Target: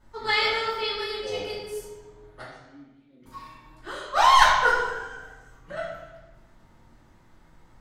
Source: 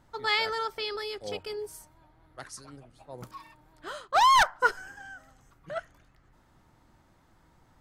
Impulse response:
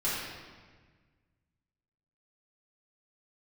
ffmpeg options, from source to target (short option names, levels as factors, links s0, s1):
-filter_complex "[0:a]asettb=1/sr,asplit=3[s0][s1][s2];[s0]atrim=end=2.434[s3];[s1]atrim=start=2.43:end=3.26,asetpts=PTS-STARTPTS,afade=t=in:d=0.004:c=qsin,afade=t=out:st=0.826:d=0.004:c=qsin,asplit=3[s4][s5][s6];[s4]bandpass=f=270:t=q:w=8,volume=1[s7];[s5]bandpass=f=2290:t=q:w=8,volume=0.501[s8];[s6]bandpass=f=3010:t=q:w=8,volume=0.355[s9];[s7][s8][s9]amix=inputs=3:normalize=0[s10];[s2]atrim=start=3.256[s11];[s3][s10]acrossfade=d=0.004:c1=hsin:c2=qsin[s12];[s12][s11]acrossfade=d=0.004:c1=qsin:c2=hsin[s13];[1:a]atrim=start_sample=2205,asetrate=61740,aresample=44100[s14];[s13][s14]afir=irnorm=-1:irlink=0,volume=0.891"